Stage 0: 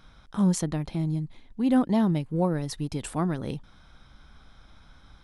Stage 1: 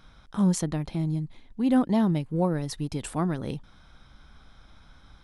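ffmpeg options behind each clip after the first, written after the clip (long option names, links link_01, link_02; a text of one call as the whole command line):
ffmpeg -i in.wav -af anull out.wav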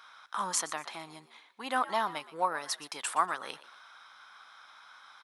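ffmpeg -i in.wav -filter_complex "[0:a]highpass=frequency=1100:width_type=q:width=1.9,asplit=4[link_01][link_02][link_03][link_04];[link_02]adelay=120,afreqshift=75,volume=-16.5dB[link_05];[link_03]adelay=240,afreqshift=150,volume=-26.1dB[link_06];[link_04]adelay=360,afreqshift=225,volume=-35.8dB[link_07];[link_01][link_05][link_06][link_07]amix=inputs=4:normalize=0,volume=3dB" out.wav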